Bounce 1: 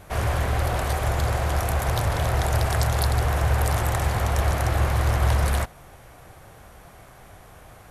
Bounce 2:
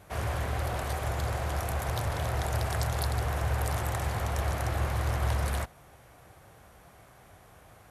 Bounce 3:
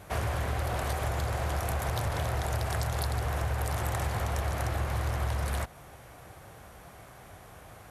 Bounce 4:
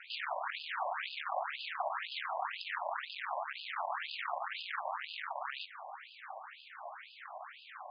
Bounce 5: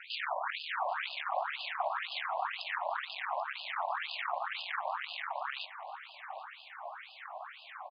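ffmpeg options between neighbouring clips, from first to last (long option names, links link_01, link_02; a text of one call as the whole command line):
ffmpeg -i in.wav -af "highpass=51,volume=-7dB" out.wav
ffmpeg -i in.wav -af "acompressor=threshold=-32dB:ratio=6,volume=5dB" out.wav
ffmpeg -i in.wav -af "aeval=exprs='(tanh(100*val(0)+0.75)-tanh(0.75))/100':channel_layout=same,afftfilt=real='re*between(b*sr/1024,780*pow(3600/780,0.5+0.5*sin(2*PI*2*pts/sr))/1.41,780*pow(3600/780,0.5+0.5*sin(2*PI*2*pts/sr))*1.41)':imag='im*between(b*sr/1024,780*pow(3600/780,0.5+0.5*sin(2*PI*2*pts/sr))/1.41,780*pow(3600/780,0.5+0.5*sin(2*PI*2*pts/sr))*1.41)':win_size=1024:overlap=0.75,volume=13.5dB" out.wav
ffmpeg -i in.wav -af "aecho=1:1:786:0.0891,volume=2.5dB" out.wav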